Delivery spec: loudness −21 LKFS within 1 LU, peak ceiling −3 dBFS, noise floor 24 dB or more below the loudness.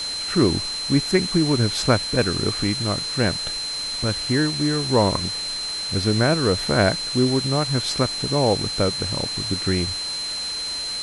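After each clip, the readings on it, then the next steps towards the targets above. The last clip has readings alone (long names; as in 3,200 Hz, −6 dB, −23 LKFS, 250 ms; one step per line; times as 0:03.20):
interfering tone 4,100 Hz; level of the tone −26 dBFS; background noise floor −28 dBFS; target noise floor −46 dBFS; integrated loudness −21.5 LKFS; sample peak −2.0 dBFS; target loudness −21.0 LKFS
→ notch filter 4,100 Hz, Q 30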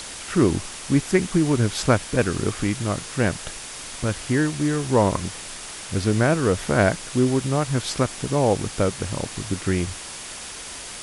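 interfering tone none found; background noise floor −36 dBFS; target noise floor −47 dBFS
→ broadband denoise 11 dB, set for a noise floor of −36 dBFS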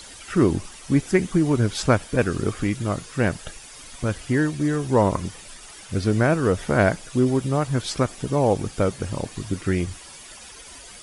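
background noise floor −43 dBFS; target noise floor −47 dBFS
→ broadband denoise 6 dB, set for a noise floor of −43 dBFS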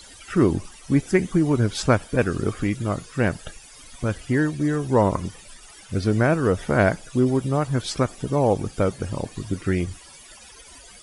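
background noise floor −46 dBFS; target noise floor −47 dBFS
→ broadband denoise 6 dB, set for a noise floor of −46 dBFS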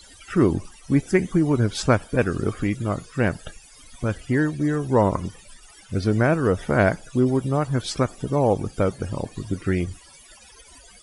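background noise floor −49 dBFS; integrated loudness −23.0 LKFS; sample peak −2.5 dBFS; target loudness −21.0 LKFS
→ level +2 dB
brickwall limiter −3 dBFS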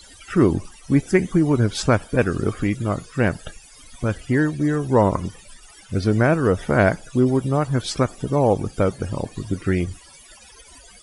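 integrated loudness −21.0 LKFS; sample peak −3.0 dBFS; background noise floor −47 dBFS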